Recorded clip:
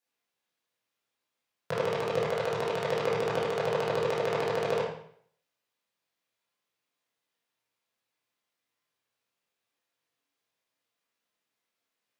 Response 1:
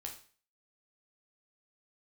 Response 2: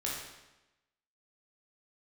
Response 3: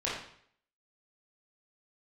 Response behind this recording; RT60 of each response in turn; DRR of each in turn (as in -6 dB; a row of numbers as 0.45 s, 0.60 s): 3; 0.40 s, 1.0 s, 0.60 s; 1.0 dB, -5.0 dB, -8.0 dB